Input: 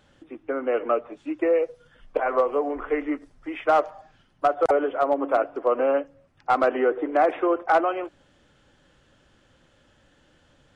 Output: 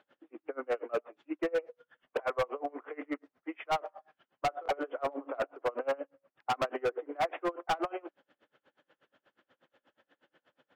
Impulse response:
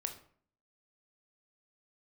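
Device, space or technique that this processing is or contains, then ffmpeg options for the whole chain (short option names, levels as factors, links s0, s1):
helicopter radio: -filter_complex "[0:a]asettb=1/sr,asplit=3[s0][s1][s2];[s0]atrim=end=3.854[s3];[s1]atrim=start=3.85:end=5.58,asetpts=PTS-STARTPTS,afade=t=in:d=0.004:c=qsin,afade=t=out:st=1.726:d=0.004:c=qsin,asplit=2[s4][s5];[s5]adelay=22,volume=0.251[s6];[s4][s6]amix=inputs=2:normalize=0,atrim=end_sample=76293[s7];[s2]atrim=start=5.576[s8];[s3][s7]acrossfade=d=0.004:c1=hsin:c2=qsin[s9];[s9][s8]acrossfade=d=0.004:c1=qsin:c2=hsin,highpass=360,lowpass=2600,aeval=exprs='val(0)*pow(10,-31*(0.5-0.5*cos(2*PI*8.3*n/s))/20)':c=same,asoftclip=type=hard:threshold=0.0562"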